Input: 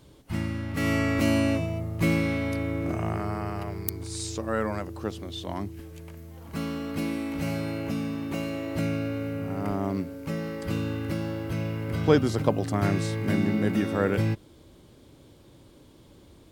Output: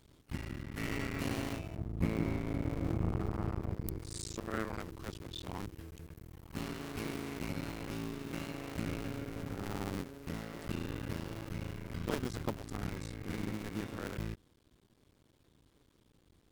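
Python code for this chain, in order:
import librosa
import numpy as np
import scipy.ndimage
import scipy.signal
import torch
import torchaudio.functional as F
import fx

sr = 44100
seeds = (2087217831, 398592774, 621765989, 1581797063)

y = fx.cycle_switch(x, sr, every=2, mode='muted')
y = fx.peak_eq(y, sr, hz=610.0, db=-6.0, octaves=1.1)
y = fx.rider(y, sr, range_db=4, speed_s=2.0)
y = fx.tilt_shelf(y, sr, db=7.0, hz=1100.0, at=(1.76, 3.98))
y = F.gain(torch.from_numpy(y), -8.0).numpy()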